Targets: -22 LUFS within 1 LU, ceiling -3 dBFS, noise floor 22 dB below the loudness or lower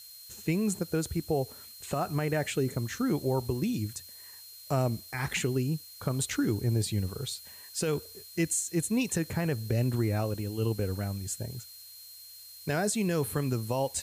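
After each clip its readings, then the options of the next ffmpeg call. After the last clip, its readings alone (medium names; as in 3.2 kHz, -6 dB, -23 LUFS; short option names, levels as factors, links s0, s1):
steady tone 4.2 kHz; tone level -50 dBFS; noise floor -49 dBFS; noise floor target -53 dBFS; loudness -31.0 LUFS; peak level -17.0 dBFS; loudness target -22.0 LUFS
-> -af "bandreject=f=4200:w=30"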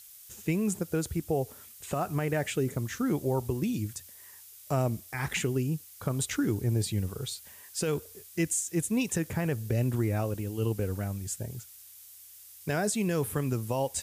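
steady tone not found; noise floor -51 dBFS; noise floor target -53 dBFS
-> -af "afftdn=nr=6:nf=-51"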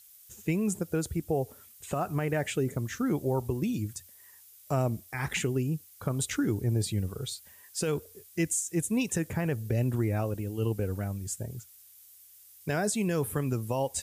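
noise floor -55 dBFS; loudness -31.0 LUFS; peak level -17.5 dBFS; loudness target -22.0 LUFS
-> -af "volume=2.82"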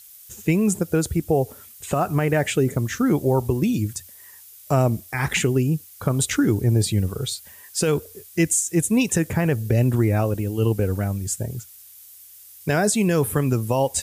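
loudness -22.0 LUFS; peak level -8.5 dBFS; noise floor -46 dBFS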